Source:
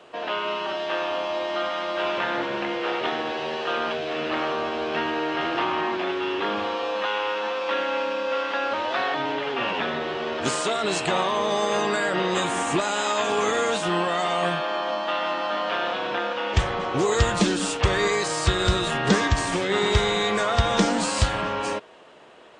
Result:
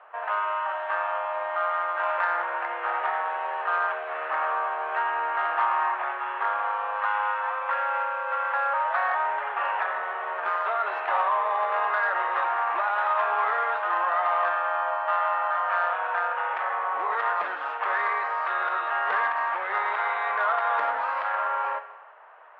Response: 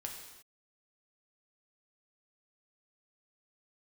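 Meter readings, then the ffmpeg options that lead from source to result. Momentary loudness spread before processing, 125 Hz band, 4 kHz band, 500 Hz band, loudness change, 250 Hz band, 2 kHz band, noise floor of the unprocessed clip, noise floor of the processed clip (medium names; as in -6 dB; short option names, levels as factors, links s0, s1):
6 LU, under -40 dB, -18.0 dB, -8.0 dB, -1.5 dB, under -25 dB, +0.5 dB, -30 dBFS, -33 dBFS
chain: -filter_complex "[0:a]lowpass=f=1700:w=0.5412,lowpass=f=1700:w=1.3066,asplit=2[s0][s1];[1:a]atrim=start_sample=2205[s2];[s1][s2]afir=irnorm=-1:irlink=0,volume=0.891[s3];[s0][s3]amix=inputs=2:normalize=0,acontrast=72,highpass=f=780:w=0.5412,highpass=f=780:w=1.3066,volume=0.473"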